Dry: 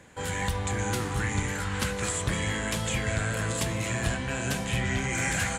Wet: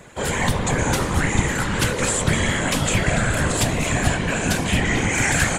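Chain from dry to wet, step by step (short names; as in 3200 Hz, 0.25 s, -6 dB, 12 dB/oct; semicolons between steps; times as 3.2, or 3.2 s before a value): whisperiser; gain +8.5 dB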